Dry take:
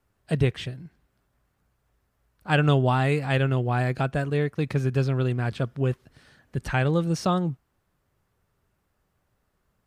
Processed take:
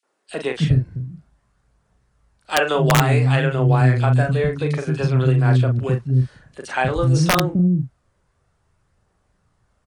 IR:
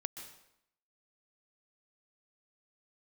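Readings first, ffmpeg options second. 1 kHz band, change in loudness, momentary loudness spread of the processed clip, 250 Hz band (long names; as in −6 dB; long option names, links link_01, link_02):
+6.0 dB, +6.5 dB, 12 LU, +6.0 dB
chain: -filter_complex "[0:a]aphaser=in_gain=1:out_gain=1:delay=2.1:decay=0.25:speed=0.55:type=triangular,aresample=22050,aresample=44100,asplit=2[link_01][link_02];[link_02]adelay=39,volume=-6dB[link_03];[link_01][link_03]amix=inputs=2:normalize=0,acrossover=split=300|2800[link_04][link_05][link_06];[link_05]adelay=30[link_07];[link_04]adelay=290[link_08];[link_08][link_07][link_06]amix=inputs=3:normalize=0,acrossover=split=110|3200[link_09][link_10][link_11];[link_10]aeval=exprs='(mod(3.98*val(0)+1,2)-1)/3.98':channel_layout=same[link_12];[link_09][link_12][link_11]amix=inputs=3:normalize=0,volume=5.5dB"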